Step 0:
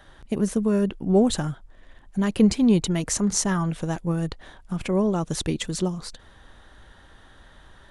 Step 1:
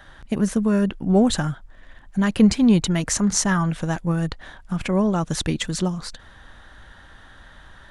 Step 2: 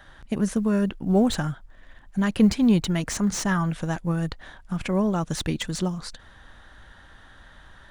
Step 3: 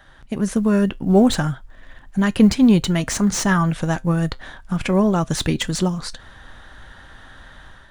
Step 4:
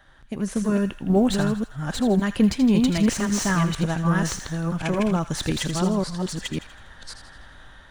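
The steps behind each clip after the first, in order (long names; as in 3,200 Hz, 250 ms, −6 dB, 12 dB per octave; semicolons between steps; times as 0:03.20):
graphic EQ with 15 bands 400 Hz −5 dB, 1,600 Hz +4 dB, 10,000 Hz −3 dB; level +3.5 dB
floating-point word with a short mantissa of 6 bits; slew-rate limiting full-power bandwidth 350 Hz; level −3 dB
automatic gain control gain up to 6.5 dB; tuned comb filter 130 Hz, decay 0.17 s, harmonics all, mix 40%; level +3 dB
delay that plays each chunk backwards 549 ms, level −2 dB; delay with a high-pass on its return 81 ms, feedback 52%, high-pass 1,500 Hz, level −9.5 dB; level −5.5 dB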